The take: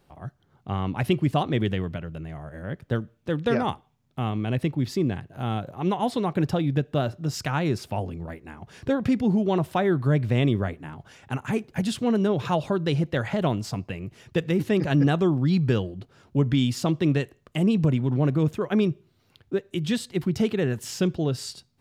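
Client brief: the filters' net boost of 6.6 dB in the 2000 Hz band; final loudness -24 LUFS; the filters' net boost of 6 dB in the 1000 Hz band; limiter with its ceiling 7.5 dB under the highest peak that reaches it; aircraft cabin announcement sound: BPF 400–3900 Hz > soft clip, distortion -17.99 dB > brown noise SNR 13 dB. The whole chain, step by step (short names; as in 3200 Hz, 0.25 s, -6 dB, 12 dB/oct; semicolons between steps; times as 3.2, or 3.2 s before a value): bell 1000 Hz +7 dB; bell 2000 Hz +6.5 dB; limiter -14 dBFS; BPF 400–3900 Hz; soft clip -17.5 dBFS; brown noise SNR 13 dB; gain +7.5 dB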